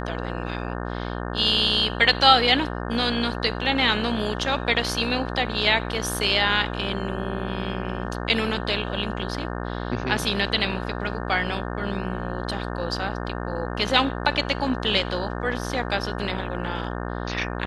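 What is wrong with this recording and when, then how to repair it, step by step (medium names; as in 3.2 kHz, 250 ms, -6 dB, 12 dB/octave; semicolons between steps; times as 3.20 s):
buzz 60 Hz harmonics 30 -30 dBFS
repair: de-hum 60 Hz, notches 30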